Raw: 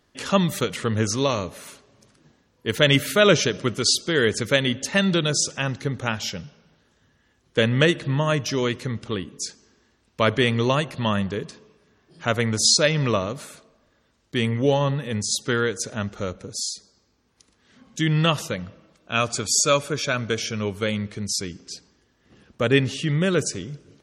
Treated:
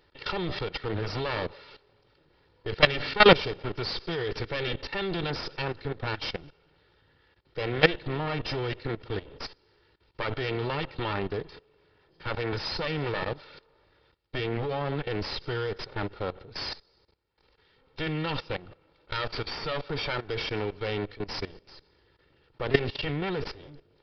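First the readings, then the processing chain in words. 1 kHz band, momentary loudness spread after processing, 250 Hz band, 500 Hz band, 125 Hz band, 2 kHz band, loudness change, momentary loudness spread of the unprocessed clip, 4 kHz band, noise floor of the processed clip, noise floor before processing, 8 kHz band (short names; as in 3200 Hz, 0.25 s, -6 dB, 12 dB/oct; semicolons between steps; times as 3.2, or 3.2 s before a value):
-3.5 dB, 13 LU, -10.0 dB, -6.0 dB, -9.0 dB, -5.0 dB, -7.0 dB, 14 LU, -7.5 dB, -66 dBFS, -65 dBFS, under -30 dB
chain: minimum comb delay 2.2 ms; level quantiser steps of 17 dB; downsampling 11025 Hz; gain +4 dB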